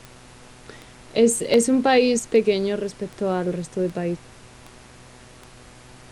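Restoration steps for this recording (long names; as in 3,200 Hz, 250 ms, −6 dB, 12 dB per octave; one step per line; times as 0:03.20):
click removal
hum removal 124.3 Hz, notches 23
repair the gap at 0:01.54/0:02.31, 1.4 ms
noise reduction from a noise print 19 dB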